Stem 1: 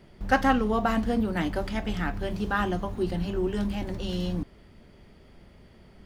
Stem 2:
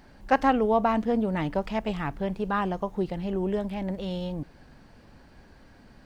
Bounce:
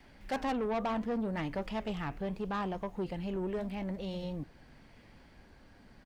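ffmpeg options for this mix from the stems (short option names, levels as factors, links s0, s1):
-filter_complex "[0:a]tremolo=f=0.61:d=0.62,highpass=f=2100:t=q:w=2.6,volume=0.75[s0];[1:a]adelay=4,volume=0.944,asplit=2[s1][s2];[s2]apad=whole_len=266879[s3];[s0][s3]sidechaincompress=threshold=0.0224:ratio=8:attack=16:release=1180[s4];[s4][s1]amix=inputs=2:normalize=0,flanger=delay=2.4:depth=5.7:regen=-88:speed=0.72:shape=triangular,asoftclip=type=tanh:threshold=0.0376"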